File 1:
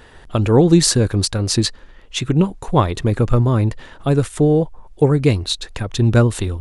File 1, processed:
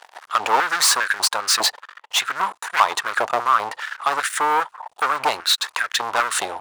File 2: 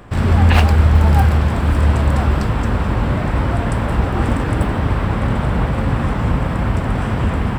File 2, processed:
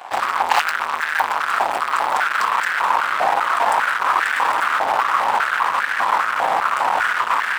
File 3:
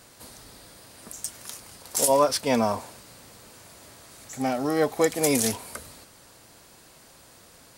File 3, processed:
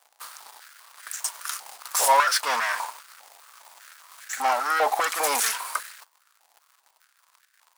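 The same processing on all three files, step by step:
waveshaping leveller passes 5; step-sequenced high-pass 5 Hz 790–1600 Hz; trim -11 dB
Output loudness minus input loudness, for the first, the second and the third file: -3.0 LU, -1.5 LU, +0.5 LU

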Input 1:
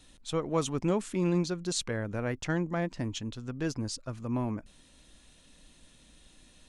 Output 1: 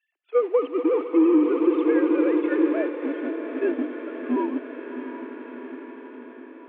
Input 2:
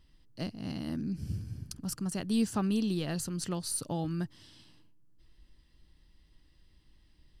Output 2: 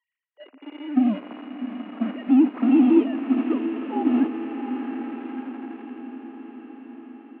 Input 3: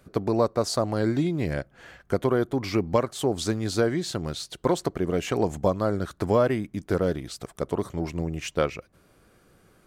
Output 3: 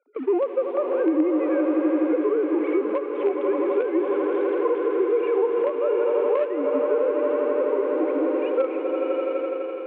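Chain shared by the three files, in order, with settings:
formants replaced by sine waves; echo with a slow build-up 83 ms, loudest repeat 8, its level -14 dB; in parallel at -9 dB: companded quantiser 2-bit; on the sum: gate -27 dBFS, range -15 dB; compression 6:1, threshold -25 dBFS; elliptic band-pass 280–2500 Hz, stop band 40 dB; on a send: echo that smears into a reverb 695 ms, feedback 68%, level -13 dB; on the sum: harmonic-percussive split percussive -10 dB; dynamic bell 1.7 kHz, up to -6 dB, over -51 dBFS, Q 0.96; normalise loudness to -23 LUFS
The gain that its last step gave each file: +11.0 dB, +15.5 dB, +8.5 dB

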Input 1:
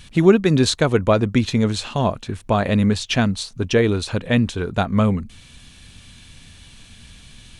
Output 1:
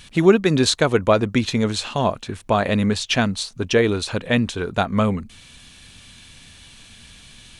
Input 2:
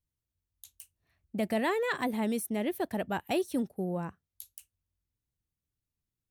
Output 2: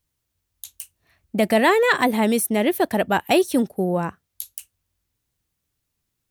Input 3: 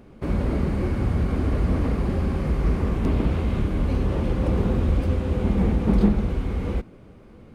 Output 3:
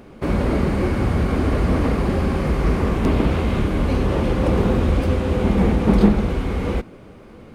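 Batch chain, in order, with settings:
bass shelf 240 Hz -7 dB; normalise loudness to -20 LUFS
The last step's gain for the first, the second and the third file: +1.5 dB, +14.0 dB, +8.5 dB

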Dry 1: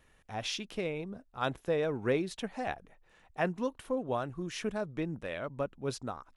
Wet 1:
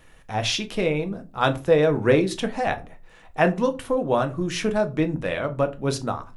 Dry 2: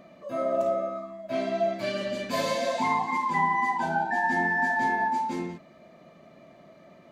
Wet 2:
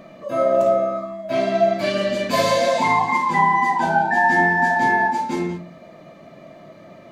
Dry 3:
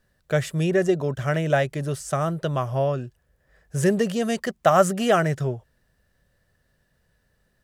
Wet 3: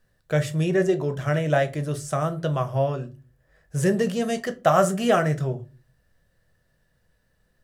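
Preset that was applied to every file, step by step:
simulated room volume 120 m³, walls furnished, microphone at 0.62 m; peak normalisation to -6 dBFS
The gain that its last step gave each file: +10.5 dB, +8.0 dB, -2.0 dB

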